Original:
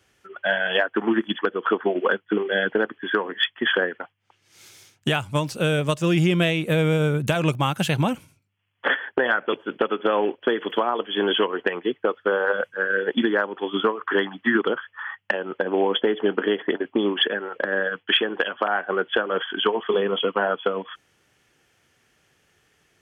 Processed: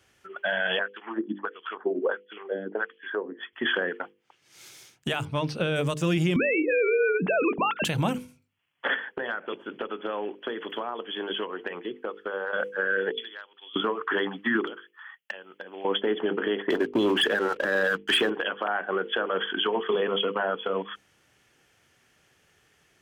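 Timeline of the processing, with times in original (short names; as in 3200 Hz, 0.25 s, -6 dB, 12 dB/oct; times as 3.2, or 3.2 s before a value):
0.79–3.53 LFO band-pass sine 1.5 Hz 260–3500 Hz
5.25–5.76 polynomial smoothing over 15 samples
6.36–7.85 sine-wave speech
8.99–12.53 compressor 2:1, threshold -35 dBFS
13.12–13.76 band-pass 3900 Hz, Q 3.6
14.66–15.85 pre-emphasis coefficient 0.9
16.7–18.3 sample leveller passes 2
whole clip: notches 50/100/150/200/250/300/350/400/450/500 Hz; limiter -16.5 dBFS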